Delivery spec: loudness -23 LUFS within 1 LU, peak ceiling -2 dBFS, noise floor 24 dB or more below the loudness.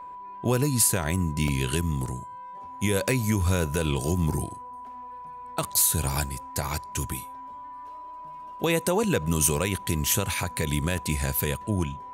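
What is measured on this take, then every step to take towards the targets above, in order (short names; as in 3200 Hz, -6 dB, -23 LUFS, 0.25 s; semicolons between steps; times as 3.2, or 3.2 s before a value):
dropouts 5; longest dropout 1.8 ms; steady tone 990 Hz; tone level -38 dBFS; loudness -26.0 LUFS; peak -9.5 dBFS; loudness target -23.0 LUFS
-> interpolate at 1.48/2.06/3.66/10.14/10.98, 1.8 ms; notch 990 Hz, Q 30; gain +3 dB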